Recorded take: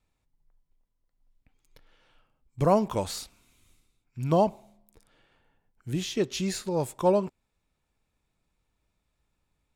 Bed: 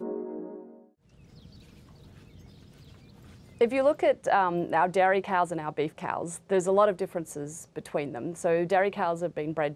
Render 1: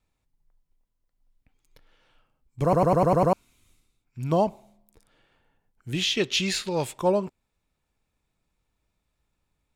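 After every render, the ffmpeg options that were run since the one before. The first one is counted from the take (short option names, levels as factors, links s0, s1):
-filter_complex "[0:a]asettb=1/sr,asplit=3[s0][s1][s2];[s0]atrim=end=5.934[s3];[s1]atrim=start=5.93:end=6.99,asetpts=PTS-STARTPTS,afade=t=in:d=0.004:c=qsin,afade=t=out:st=1.056:d=0.004:c=qsin,equalizer=f=2900:w=0.73:g=13[s4];[s2]atrim=start=6.986[s5];[s3][s4]acrossfade=d=0.004:c1=hsin:c2=qsin[s6];[s6][s5]acrossfade=d=0.004:c1=qsin:c2=hsin,asplit=8[s7][s8][s9][s10][s11][s12][s13][s14];[s7]atrim=end=2.732[s15];[s8]atrim=start=2.628:end=2.732[s16];[s9]atrim=start=2.628:end=2.732[s17];[s10]atrim=start=2.628:end=2.732[s18];[s11]atrim=start=2.628:end=2.732[s19];[s12]atrim=start=2.628:end=2.732[s20];[s13]atrim=start=2.628:end=2.732[s21];[s14]atrim=start=3.328[s22];[s15][s16]acrossfade=d=0.004:c1=hsin:c2=hsin[s23];[s23][s17]acrossfade=d=0.004:c1=hsin:c2=hsin[s24];[s24][s18]acrossfade=d=0.004:c1=hsin:c2=hsin[s25];[s25][s19]acrossfade=d=0.004:c1=hsin:c2=hsin[s26];[s26][s20]acrossfade=d=0.004:c1=hsin:c2=hsin[s27];[s27][s21]acrossfade=d=0.004:c1=hsin:c2=hsin[s28];[s28][s22]acrossfade=d=0.004:c1=hsin:c2=hsin"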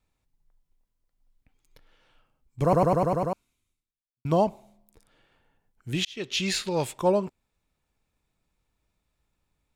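-filter_complex "[0:a]asplit=3[s0][s1][s2];[s0]atrim=end=4.25,asetpts=PTS-STARTPTS,afade=t=out:st=2.78:d=1.47:c=qua[s3];[s1]atrim=start=4.25:end=6.05,asetpts=PTS-STARTPTS,afade=t=in:d=0.004:c=hsin,afade=t=out:st=1.796:d=0.004:c=hsin[s4];[s2]atrim=start=6.05,asetpts=PTS-STARTPTS,afade=t=in:d=0.46[s5];[s3][s4][s5]concat=n=3:v=0:a=1"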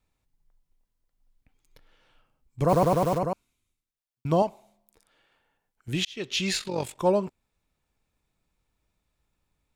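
-filter_complex "[0:a]asplit=3[s0][s1][s2];[s0]afade=t=out:st=2.68:d=0.02[s3];[s1]acrusher=bits=7:dc=4:mix=0:aa=0.000001,afade=t=in:st=2.68:d=0.02,afade=t=out:st=3.17:d=0.02[s4];[s2]afade=t=in:st=3.17:d=0.02[s5];[s3][s4][s5]amix=inputs=3:normalize=0,asettb=1/sr,asplit=3[s6][s7][s8];[s6]atrim=end=4.424[s9];[s7]atrim=start=4.42:end=5.88,asetpts=PTS-STARTPTS,afade=t=in:d=0.004:c=qsin,afade=t=out:st=1.456:d=0.004:c=qsin,lowshelf=f=320:g=-11.5[s10];[s8]atrim=start=5.876[s11];[s9][s10]acrossfade=d=0.004:c1=hsin:c2=qsin[s12];[s12][s11]acrossfade=d=0.004:c1=qsin:c2=hsin,asplit=3[s13][s14][s15];[s13]afade=t=out:st=6.57:d=0.02[s16];[s14]tremolo=f=46:d=0.71,afade=t=in:st=6.57:d=0.02,afade=t=out:st=6.99:d=0.02[s17];[s15]afade=t=in:st=6.99:d=0.02[s18];[s16][s17][s18]amix=inputs=3:normalize=0"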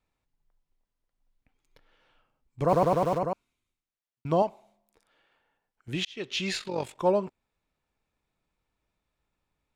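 -af "lowpass=f=3300:p=1,lowshelf=f=220:g=-6.5"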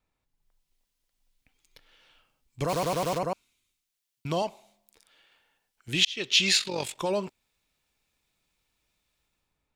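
-filter_complex "[0:a]acrossover=split=2400[s0][s1];[s0]alimiter=limit=0.0944:level=0:latency=1[s2];[s1]dynaudnorm=f=110:g=9:m=3.98[s3];[s2][s3]amix=inputs=2:normalize=0"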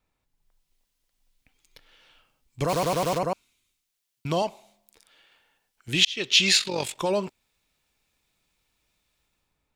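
-af "volume=1.41"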